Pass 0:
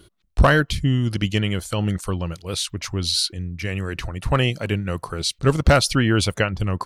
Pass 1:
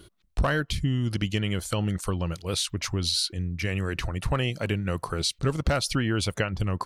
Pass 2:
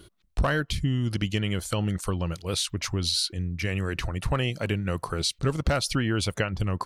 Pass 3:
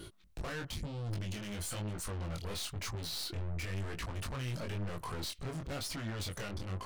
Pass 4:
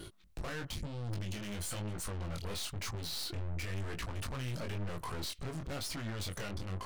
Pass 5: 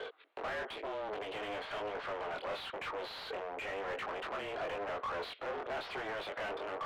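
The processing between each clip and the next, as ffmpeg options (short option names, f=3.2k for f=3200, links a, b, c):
-af "acompressor=threshold=-24dB:ratio=3"
-af anull
-af "alimiter=level_in=1.5dB:limit=-24dB:level=0:latency=1:release=55,volume=-1.5dB,aeval=exprs='(tanh(126*val(0)+0.3)-tanh(0.3))/126':c=same,flanger=delay=18:depth=6.5:speed=1,volume=7.5dB"
-af "aeval=exprs='(tanh(70.8*val(0)+0.5)-tanh(0.5))/70.8':c=same,volume=2.5dB"
-filter_complex "[0:a]highpass=f=310:t=q:w=0.5412,highpass=f=310:t=q:w=1.307,lowpass=f=3.6k:t=q:w=0.5176,lowpass=f=3.6k:t=q:w=0.7071,lowpass=f=3.6k:t=q:w=1.932,afreqshift=100,asplit=2[a][b];[b]highpass=f=720:p=1,volume=23dB,asoftclip=type=tanh:threshold=-30dB[c];[a][c]amix=inputs=2:normalize=0,lowpass=f=2.9k:p=1,volume=-6dB,highshelf=f=2.3k:g=-9,volume=1dB"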